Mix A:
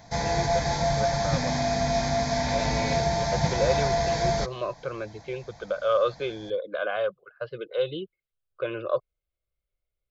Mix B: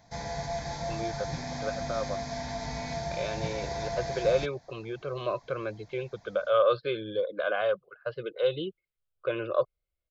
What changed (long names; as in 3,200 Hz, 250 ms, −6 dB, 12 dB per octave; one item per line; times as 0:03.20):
speech: entry +0.65 s
background −9.5 dB